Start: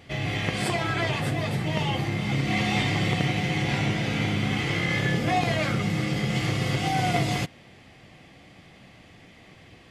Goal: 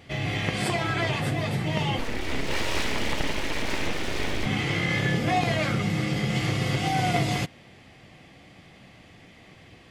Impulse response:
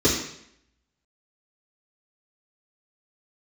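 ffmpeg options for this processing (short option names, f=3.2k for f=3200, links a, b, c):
-filter_complex "[0:a]asettb=1/sr,asplit=3[a][b][c];[a]atrim=end=1.994[d];[b]atrim=start=1.99:end=4.46,asetpts=PTS-STARTPTS,afade=t=in:d=0.004:c=qsin,afade=t=out:st=2.466:d=0.004:c=qsin,aeval=exprs='abs(val(0))':c=same[e];[c]atrim=start=4.456[f];[d][e]acrossfade=d=0.004:c1=hsin:c2=qsin[g];[g][f]acrossfade=d=0.004:c1=qsin:c2=hsin"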